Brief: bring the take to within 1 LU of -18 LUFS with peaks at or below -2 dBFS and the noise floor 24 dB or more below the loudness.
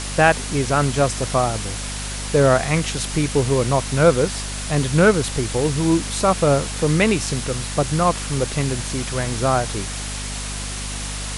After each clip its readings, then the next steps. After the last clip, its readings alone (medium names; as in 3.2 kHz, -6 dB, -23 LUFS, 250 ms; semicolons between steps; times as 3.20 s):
hum 50 Hz; highest harmonic 250 Hz; hum level -28 dBFS; noise floor -28 dBFS; noise floor target -44 dBFS; loudness -20.0 LUFS; peak level -1.0 dBFS; loudness target -18.0 LUFS
-> hum notches 50/100/150/200/250 Hz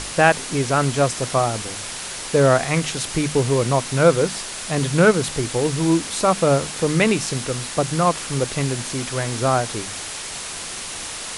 hum not found; noise floor -31 dBFS; noise floor target -45 dBFS
-> noise print and reduce 14 dB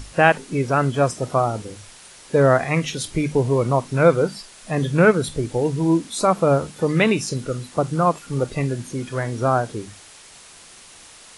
noise floor -45 dBFS; loudness -20.5 LUFS; peak level -1.5 dBFS; loudness target -18.0 LUFS
-> trim +2.5 dB; peak limiter -2 dBFS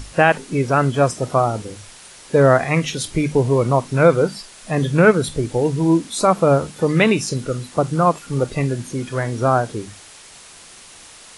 loudness -18.5 LUFS; peak level -2.0 dBFS; noise floor -43 dBFS